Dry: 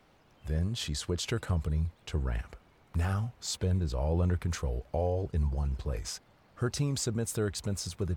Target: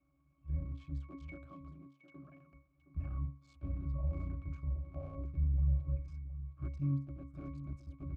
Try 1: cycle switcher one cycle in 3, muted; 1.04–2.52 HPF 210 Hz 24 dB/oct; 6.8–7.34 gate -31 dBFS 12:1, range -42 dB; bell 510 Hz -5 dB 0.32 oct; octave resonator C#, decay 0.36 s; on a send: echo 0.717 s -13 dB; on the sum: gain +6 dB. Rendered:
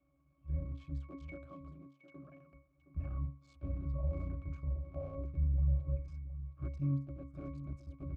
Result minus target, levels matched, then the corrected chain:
500 Hz band +5.5 dB
cycle switcher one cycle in 3, muted; 1.04–2.52 HPF 210 Hz 24 dB/oct; 6.8–7.34 gate -31 dBFS 12:1, range -42 dB; bell 510 Hz -15 dB 0.32 oct; octave resonator C#, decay 0.36 s; on a send: echo 0.717 s -13 dB; on the sum: gain +6 dB

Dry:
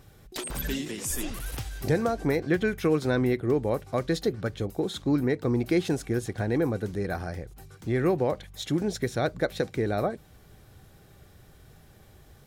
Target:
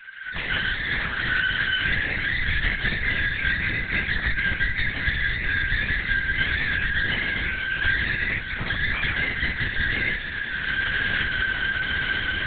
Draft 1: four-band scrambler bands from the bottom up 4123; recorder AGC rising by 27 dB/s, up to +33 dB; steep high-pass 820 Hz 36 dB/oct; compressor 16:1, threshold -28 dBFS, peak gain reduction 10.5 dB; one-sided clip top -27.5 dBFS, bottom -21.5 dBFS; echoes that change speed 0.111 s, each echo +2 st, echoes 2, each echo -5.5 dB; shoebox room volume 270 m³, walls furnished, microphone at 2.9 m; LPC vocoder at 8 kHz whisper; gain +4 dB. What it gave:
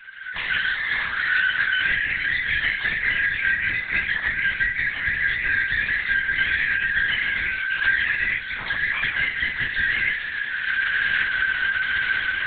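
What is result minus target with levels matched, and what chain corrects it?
one-sided clip: distortion -10 dB
four-band scrambler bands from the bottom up 4123; recorder AGC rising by 27 dB/s, up to +33 dB; steep high-pass 820 Hz 36 dB/oct; compressor 16:1, threshold -28 dBFS, peak gain reduction 10.5 dB; one-sided clip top -38 dBFS, bottom -21.5 dBFS; echoes that change speed 0.111 s, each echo +2 st, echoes 2, each echo -5.5 dB; shoebox room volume 270 m³, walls furnished, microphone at 2.9 m; LPC vocoder at 8 kHz whisper; gain +4 dB

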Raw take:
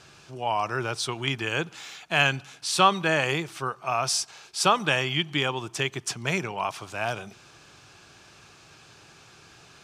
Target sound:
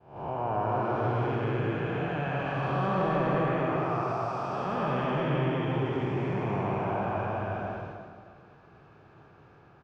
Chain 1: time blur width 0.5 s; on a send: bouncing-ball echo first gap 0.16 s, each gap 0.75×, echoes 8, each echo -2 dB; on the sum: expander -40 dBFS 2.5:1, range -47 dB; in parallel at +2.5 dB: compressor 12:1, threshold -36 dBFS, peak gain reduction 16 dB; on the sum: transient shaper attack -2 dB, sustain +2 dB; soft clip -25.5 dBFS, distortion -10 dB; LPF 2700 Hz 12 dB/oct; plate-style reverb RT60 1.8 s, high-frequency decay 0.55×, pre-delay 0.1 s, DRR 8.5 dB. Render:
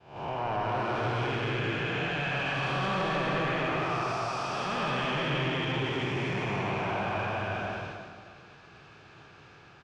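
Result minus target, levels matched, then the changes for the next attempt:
2000 Hz band +6.5 dB; soft clip: distortion +9 dB
change: soft clip -17 dBFS, distortion -19 dB; change: LPF 1100 Hz 12 dB/oct

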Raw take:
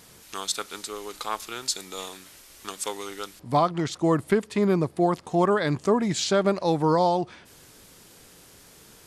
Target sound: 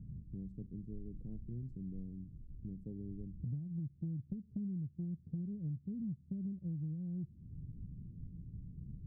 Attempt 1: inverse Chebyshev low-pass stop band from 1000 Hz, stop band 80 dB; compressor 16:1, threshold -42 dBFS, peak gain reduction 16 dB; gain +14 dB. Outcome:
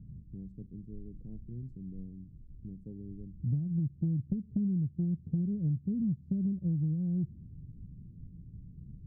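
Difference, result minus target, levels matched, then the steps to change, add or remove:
compressor: peak gain reduction -9.5 dB
change: compressor 16:1, threshold -52 dBFS, peak gain reduction 25.5 dB

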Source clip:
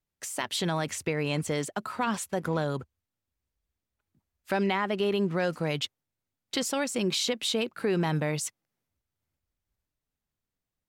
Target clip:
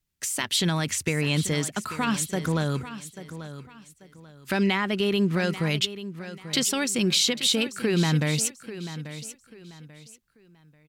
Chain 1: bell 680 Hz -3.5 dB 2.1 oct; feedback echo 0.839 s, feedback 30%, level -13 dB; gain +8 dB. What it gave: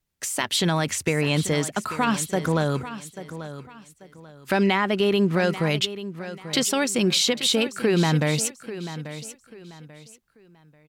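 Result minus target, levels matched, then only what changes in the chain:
500 Hz band +3.5 dB
change: bell 680 Hz -10.5 dB 2.1 oct

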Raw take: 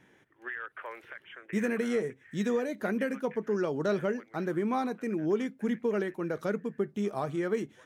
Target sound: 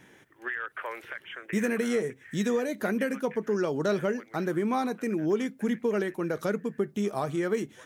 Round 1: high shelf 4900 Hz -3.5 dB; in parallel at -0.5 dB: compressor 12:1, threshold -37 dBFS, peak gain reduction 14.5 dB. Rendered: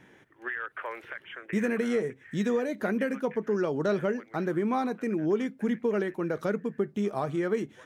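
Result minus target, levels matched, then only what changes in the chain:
8000 Hz band -7.5 dB
change: high shelf 4900 Hz +7.5 dB

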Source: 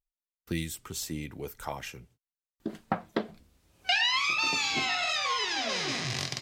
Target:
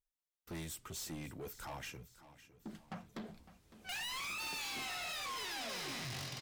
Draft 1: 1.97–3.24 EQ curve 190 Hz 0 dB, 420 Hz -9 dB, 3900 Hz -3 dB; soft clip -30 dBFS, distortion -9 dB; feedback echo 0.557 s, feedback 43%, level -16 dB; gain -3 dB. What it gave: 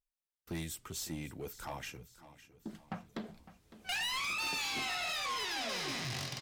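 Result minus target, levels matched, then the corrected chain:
soft clip: distortion -4 dB
1.97–3.24 EQ curve 190 Hz 0 dB, 420 Hz -9 dB, 3900 Hz -3 dB; soft clip -37.5 dBFS, distortion -5 dB; feedback echo 0.557 s, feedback 43%, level -16 dB; gain -3 dB

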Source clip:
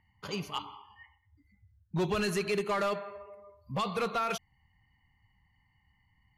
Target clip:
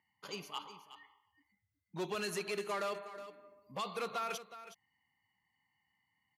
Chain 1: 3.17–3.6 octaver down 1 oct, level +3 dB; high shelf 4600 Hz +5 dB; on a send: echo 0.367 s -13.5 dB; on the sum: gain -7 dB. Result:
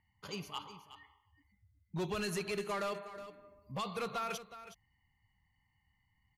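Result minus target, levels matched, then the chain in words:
250 Hz band +3.5 dB
3.17–3.6 octaver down 1 oct, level +3 dB; HPF 250 Hz 12 dB/oct; high shelf 4600 Hz +5 dB; on a send: echo 0.367 s -13.5 dB; on the sum: gain -7 dB

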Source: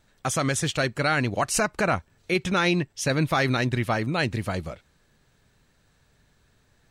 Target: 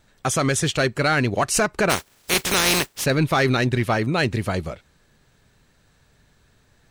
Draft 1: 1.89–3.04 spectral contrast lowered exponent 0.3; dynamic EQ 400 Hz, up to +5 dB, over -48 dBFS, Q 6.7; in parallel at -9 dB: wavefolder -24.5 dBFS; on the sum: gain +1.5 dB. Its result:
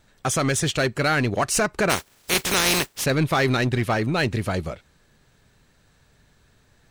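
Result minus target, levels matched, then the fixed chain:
wavefolder: distortion +12 dB
1.89–3.04 spectral contrast lowered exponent 0.3; dynamic EQ 400 Hz, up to +5 dB, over -48 dBFS, Q 6.7; in parallel at -9 dB: wavefolder -18.5 dBFS; on the sum: gain +1.5 dB

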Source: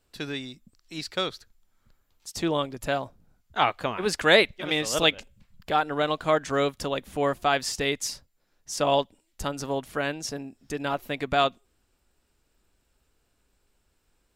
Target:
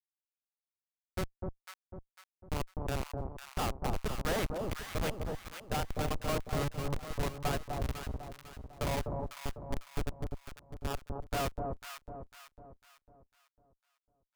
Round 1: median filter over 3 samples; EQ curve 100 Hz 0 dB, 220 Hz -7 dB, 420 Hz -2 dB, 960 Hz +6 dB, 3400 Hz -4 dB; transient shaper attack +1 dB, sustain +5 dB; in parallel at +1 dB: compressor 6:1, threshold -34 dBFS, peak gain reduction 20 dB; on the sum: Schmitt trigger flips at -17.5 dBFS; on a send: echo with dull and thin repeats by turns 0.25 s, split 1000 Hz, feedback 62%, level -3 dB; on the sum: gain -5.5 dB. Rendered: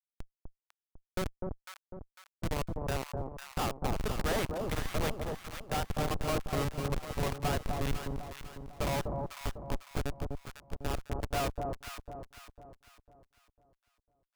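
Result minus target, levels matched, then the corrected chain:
compressor: peak gain reduction -7 dB
median filter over 3 samples; EQ curve 100 Hz 0 dB, 220 Hz -7 dB, 420 Hz -2 dB, 960 Hz +6 dB, 3400 Hz -4 dB; transient shaper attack +1 dB, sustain +5 dB; in parallel at +1 dB: compressor 6:1, threshold -42.5 dBFS, peak gain reduction 27 dB; on the sum: Schmitt trigger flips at -17.5 dBFS; on a send: echo with dull and thin repeats by turns 0.25 s, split 1000 Hz, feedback 62%, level -3 dB; on the sum: gain -5.5 dB

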